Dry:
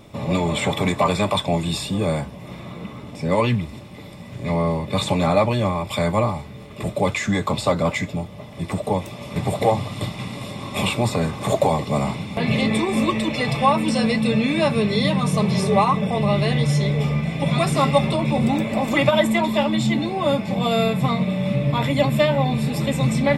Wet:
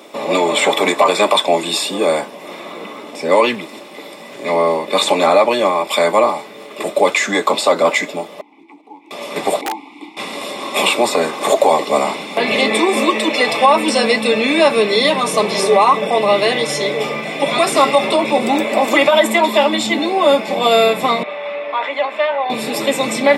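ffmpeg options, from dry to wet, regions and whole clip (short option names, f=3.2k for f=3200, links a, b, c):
-filter_complex "[0:a]asettb=1/sr,asplit=3[a][b][c];[a]atrim=end=8.414[d];[b]atrim=start=8.41:end=9.11,asetpts=PTS-STARTPTS,afade=t=in:d=0.004:c=qsin,afade=t=out:st=0.696:d=0.004:c=qsin,acompressor=threshold=-36dB:ratio=2.5:attack=3.2:release=140:knee=1:detection=peak,acrusher=bits=4:mode=log:mix=0:aa=0.000001,asplit=3[e][f][g];[e]bandpass=f=300:t=q:w=8,volume=0dB[h];[f]bandpass=f=870:t=q:w=8,volume=-6dB[i];[g]bandpass=f=2.24k:t=q:w=8,volume=-9dB[j];[h][i][j]amix=inputs=3:normalize=0[k];[c]atrim=start=9.106[l];[d][k]acrossfade=d=0.004:c1=hsin:c2=qsin[m];[m][l]acrossfade=d=0.004:c1=qsin:c2=hsin,asettb=1/sr,asplit=3[n][o][p];[n]atrim=end=9.614[q];[o]atrim=start=9.61:end=10.17,asetpts=PTS-STARTPTS,afade=t=in:d=0.004:c=qsin,afade=t=out:st=0.556:d=0.004:c=qsin,asplit=3[r][s][t];[r]bandpass=f=300:t=q:w=8,volume=0dB[u];[s]bandpass=f=870:t=q:w=8,volume=-6dB[v];[t]bandpass=f=2.24k:t=q:w=8,volume=-9dB[w];[u][v][w]amix=inputs=3:normalize=0,highshelf=f=5.5k:g=11.5,aeval=exprs='(mod(15*val(0)+1,2)-1)/15':c=same[x];[p]atrim=start=10.166[y];[q][x]acrossfade=d=0.004:c1=hsin:c2=qsin[z];[z][y]acrossfade=d=0.004:c1=qsin:c2=hsin,asettb=1/sr,asplit=3[aa][ab][ac];[aa]atrim=end=21.234[ad];[ab]atrim=start=21.23:end=22.5,asetpts=PTS-STARTPTS,afade=t=in:d=0.004:c=qsin,afade=t=out:st=1.266:d=0.004:c=qsin,highpass=720,lowpass=2.2k,acompressor=threshold=-27dB:ratio=1.5:attack=3.2:release=140:knee=1:detection=peak[ae];[ac]atrim=start=22.496[af];[ad][ae]acrossfade=d=0.004:c1=hsin:c2=qsin[ag];[ag][af]acrossfade=d=0.004:c1=qsin:c2=hsin,highpass=f=310:w=0.5412,highpass=f=310:w=1.3066,alimiter=level_in=10.5dB:limit=-1dB:release=50:level=0:latency=1,volume=-1dB"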